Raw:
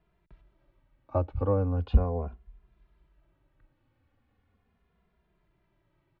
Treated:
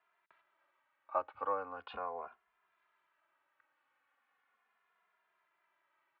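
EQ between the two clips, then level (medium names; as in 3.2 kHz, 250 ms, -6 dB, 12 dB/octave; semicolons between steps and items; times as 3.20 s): ladder band-pass 1.6 kHz, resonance 25%; +14.0 dB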